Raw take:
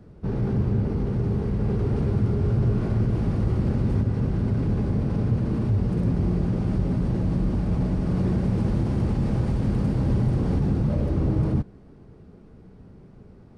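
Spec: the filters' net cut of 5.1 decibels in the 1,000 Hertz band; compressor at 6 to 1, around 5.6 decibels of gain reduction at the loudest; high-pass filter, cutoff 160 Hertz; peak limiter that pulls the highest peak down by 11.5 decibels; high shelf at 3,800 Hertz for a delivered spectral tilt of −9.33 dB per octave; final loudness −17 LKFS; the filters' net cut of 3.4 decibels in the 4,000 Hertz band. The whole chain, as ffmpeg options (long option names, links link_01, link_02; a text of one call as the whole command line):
ffmpeg -i in.wav -af "highpass=160,equalizer=frequency=1000:width_type=o:gain=-7,highshelf=frequency=3800:gain=6.5,equalizer=frequency=4000:width_type=o:gain=-8.5,acompressor=threshold=-29dB:ratio=6,volume=23.5dB,alimiter=limit=-9.5dB:level=0:latency=1" out.wav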